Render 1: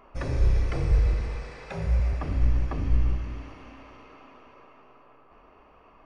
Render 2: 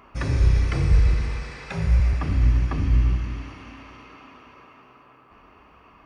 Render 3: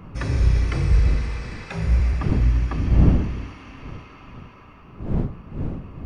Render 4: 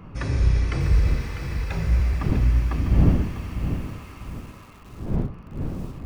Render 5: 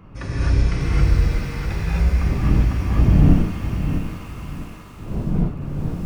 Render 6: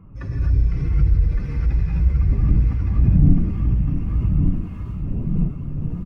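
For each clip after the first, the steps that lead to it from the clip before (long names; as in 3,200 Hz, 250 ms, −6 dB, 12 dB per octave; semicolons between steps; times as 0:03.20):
high-pass filter 54 Hz; parametric band 570 Hz −9 dB 1.4 octaves; level +7.5 dB
wind on the microphone 160 Hz −27 dBFS
feedback echo at a low word length 648 ms, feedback 35%, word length 7 bits, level −9 dB; level −1.5 dB
reverb whose tail is shaped and stops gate 290 ms rising, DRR −6 dB; level −3 dB
expanding power law on the bin magnitudes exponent 1.5; single-tap delay 1,163 ms −5 dB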